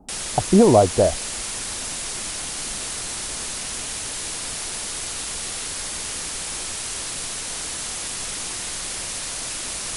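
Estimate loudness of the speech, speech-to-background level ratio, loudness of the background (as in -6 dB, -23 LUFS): -17.5 LUFS, 9.5 dB, -27.0 LUFS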